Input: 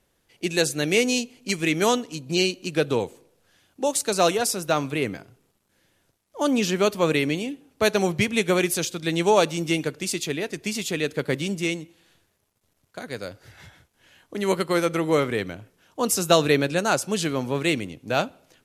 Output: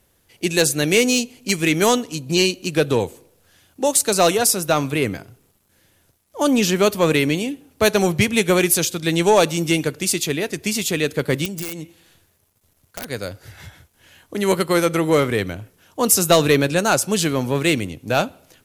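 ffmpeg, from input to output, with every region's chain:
-filter_complex "[0:a]asettb=1/sr,asplit=3[s0][s1][s2];[s0]atrim=end=11.454[s3];[s1]atrim=start=11.45:end=13.1,asetpts=PTS-STARTPTS,afade=t=in:d=0.004:c=qsin,afade=t=out:st=1.646:d=0.004:c=qsin,acompressor=threshold=0.0282:ratio=16:attack=3.2:release=140:knee=1:detection=peak,aeval=exprs='(mod(22.4*val(0)+1,2)-1)/22.4':c=same[s4];[s2]atrim=start=13.096[s5];[s3][s4]acrossfade=d=0.004:c1=hsin:c2=qsin[s6];[s6][s5]acrossfade=d=0.004:c1=qsin:c2=hsin,equalizer=f=83:w=1.3:g=6,acontrast=75,highshelf=f=11000:g=12,volume=0.794"

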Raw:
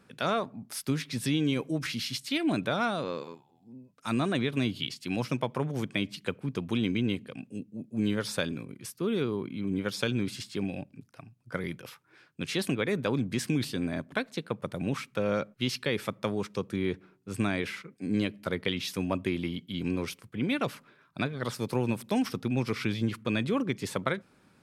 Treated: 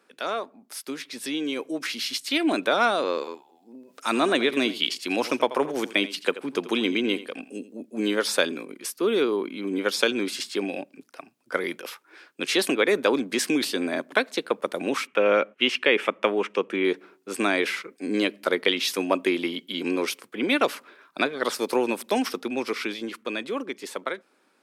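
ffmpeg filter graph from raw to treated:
-filter_complex "[0:a]asettb=1/sr,asplit=3[s0][s1][s2];[s0]atrim=end=3.754[s3];[s1]atrim=start=3.75:end=7.81,asetpts=PTS-STARTPTS,afade=t=in:d=0.004:c=qsin,afade=t=out:st=4.056:d=0.004:c=qsin,acompressor=mode=upward:threshold=0.00562:ratio=2.5:attack=3.2:release=140:knee=2.83:detection=peak,aecho=1:1:84:0.178,atrim=end_sample=179046[s4];[s2]atrim=start=7.806[s5];[s3][s4]acrossfade=d=0.004:c1=hsin:c2=qsin[s6];[s6][s5]acrossfade=d=0.004:c1=qsin:c2=hsin,asettb=1/sr,asplit=3[s7][s8][s9];[s7]atrim=end=15.074[s10];[s8]atrim=start=15.07:end=16.85,asetpts=PTS-STARTPTS,afade=t=in:d=0.004:c=qsin,afade=t=out:st=1.776:d=0.004:c=qsin,lowpass=7900,highshelf=f=3500:t=q:w=3:g=-6.5[s11];[s9]atrim=start=16.846[s12];[s10][s11]acrossfade=d=0.004:c1=hsin:c2=qsin[s13];[s13][s12]acrossfade=d=0.004:c1=qsin:c2=hsin,highpass=f=300:w=0.5412,highpass=f=300:w=1.3066,dynaudnorm=f=140:g=31:m=2.99"

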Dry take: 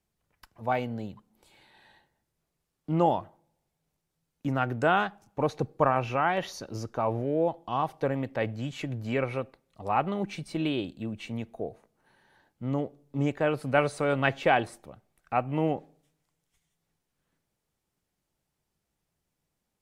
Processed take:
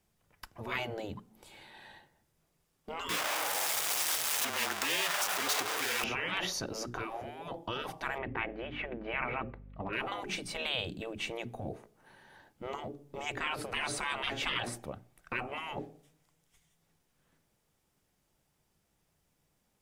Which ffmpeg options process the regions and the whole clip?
-filter_complex "[0:a]asettb=1/sr,asplit=3[s0][s1][s2];[s0]atrim=end=3.094[s3];[s1]atrim=start=3.09:end=6.04,asetpts=PTS-STARTPTS,afade=t=in:d=0.004:c=qsin,afade=t=out:st=2.946:d=0.004:c=qsin,aeval=exprs='val(0)+0.5*0.0422*sgn(val(0))':c=same,highpass=960,afreqshift=-28[s4];[s2]atrim=start=6.036[s5];[s3][s4]acrossfade=d=0.004:c1=hsin:c2=qsin[s6];[s6][s5]acrossfade=d=0.004:c1=qsin:c2=hsin,asettb=1/sr,asplit=3[s7][s8][s9];[s7]atrim=end=8.184[s10];[s8]atrim=start=8.18:end=9.93,asetpts=PTS-STARTPTS,afade=t=in:d=0.004:c=qsin,afade=t=out:st=1.746:d=0.004:c=qsin,lowpass=f=2500:w=0.5412,lowpass=f=2500:w=1.3066,aeval=exprs='val(0)+0.00178*(sin(2*PI*50*n/s)+sin(2*PI*2*50*n/s)/2+sin(2*PI*3*50*n/s)/3+sin(2*PI*4*50*n/s)/4+sin(2*PI*5*50*n/s)/5)':c=same[s11];[s9]atrim=start=9.926[s12];[s10][s11]acrossfade=d=0.004:c1=hsin:c2=qsin[s13];[s13][s12]acrossfade=d=0.004:c1=qsin:c2=hsin,bandreject=f=60:t=h:w=6,bandreject=f=120:t=h:w=6,bandreject=f=180:t=h:w=6,bandreject=f=240:t=h:w=6,bandreject=f=300:t=h:w=6,bandreject=f=360:t=h:w=6,bandreject=f=420:t=h:w=6,afftfilt=real='re*lt(hypot(re,im),0.0631)':imag='im*lt(hypot(re,im),0.0631)':win_size=1024:overlap=0.75,bandreject=f=4200:w=25,volume=2"

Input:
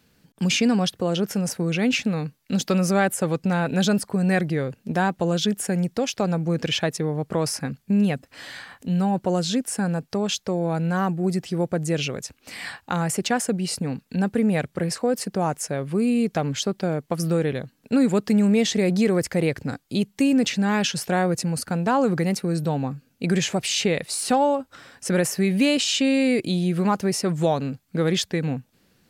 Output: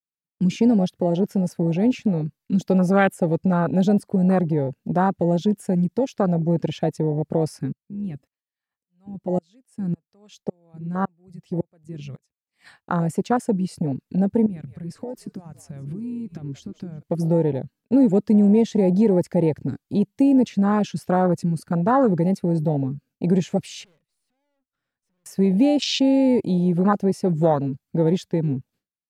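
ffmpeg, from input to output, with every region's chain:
-filter_complex "[0:a]asettb=1/sr,asplit=3[s0][s1][s2];[s0]atrim=end=7.724[s3];[s1]atrim=start=7.72:end=12.66,asetpts=PTS-STARTPTS,afade=t=in:d=0.004:c=qsin,afade=t=out:st=4.936:d=0.004:c=qsin,bandreject=f=1500:w=9.5,aeval=exprs='val(0)*pow(10,-27*if(lt(mod(-1.8*n/s,1),2*abs(-1.8)/1000),1-mod(-1.8*n/s,1)/(2*abs(-1.8)/1000),(mod(-1.8*n/s,1)-2*abs(-1.8)/1000)/(1-2*abs(-1.8)/1000))/20)':c=same[s4];[s2]atrim=start=12.656[s5];[s3][s4]acrossfade=d=0.004:c1=hsin:c2=qsin[s6];[s6][s5]acrossfade=d=0.004:c1=qsin:c2=hsin,asettb=1/sr,asplit=3[s7][s8][s9];[s7]atrim=end=14.464[s10];[s8]atrim=start=14.46:end=17.03,asetpts=PTS-STARTPTS,afade=t=in:d=0.004:c=qsin,afade=t=out:st=2.566:d=0.004:c=qsin,asplit=4[s11][s12][s13][s14];[s12]adelay=178,afreqshift=-69,volume=0.1[s15];[s13]adelay=356,afreqshift=-138,volume=0.0442[s16];[s14]adelay=534,afreqshift=-207,volume=0.0193[s17];[s11][s15][s16][s17]amix=inputs=4:normalize=0,atrim=end_sample=113337,acompressor=threshold=0.0355:ratio=12:attack=3.2:release=140:knee=1:detection=peak[s18];[s9]atrim=start=17.026[s19];[s10][s18]acrossfade=d=0.004:c1=hsin:c2=qsin[s20];[s20][s19]acrossfade=d=0.004:c1=qsin:c2=hsin,asettb=1/sr,asplit=3[s21][s22][s23];[s21]atrim=end=23.844[s24];[s22]atrim=start=23.84:end=25.26,asetpts=PTS-STARTPTS,afade=t=in:d=0.004:c=qsin,afade=t=out:st=1.416:d=0.004:c=qsin,aeval=exprs='(tanh(70.8*val(0)+0.3)-tanh(0.3))/70.8':c=same,bass=f=250:g=6,treble=f=4000:g=-4,acompressor=threshold=0.00708:ratio=8:attack=3.2:release=140:knee=1:detection=peak[s25];[s23]atrim=start=25.256[s26];[s24][s25]acrossfade=d=0.004:c1=hsin:c2=qsin[s27];[s27][s26]acrossfade=d=0.004:c1=qsin:c2=hsin,afwtdn=0.0708,agate=range=0.0224:threshold=0.00282:ratio=3:detection=peak,volume=1.41"

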